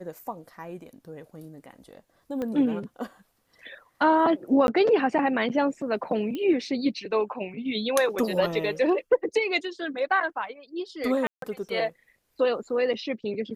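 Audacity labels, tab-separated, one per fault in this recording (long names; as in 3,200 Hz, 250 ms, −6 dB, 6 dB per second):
2.420000	2.420000	click −20 dBFS
4.670000	4.680000	drop-out 11 ms
6.350000	6.350000	click −21 dBFS
11.270000	11.420000	drop-out 153 ms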